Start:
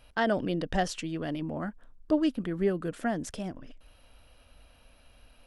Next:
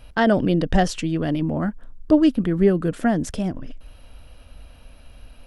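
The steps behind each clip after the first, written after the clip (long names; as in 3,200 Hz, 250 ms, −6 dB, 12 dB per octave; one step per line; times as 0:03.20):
low-shelf EQ 300 Hz +8 dB
level +6.5 dB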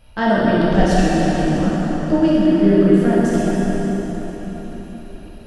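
dense smooth reverb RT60 4.9 s, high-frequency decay 0.75×, DRR −9 dB
level −5 dB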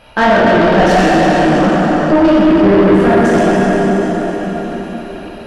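mid-hump overdrive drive 25 dB, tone 1,700 Hz, clips at −1 dBFS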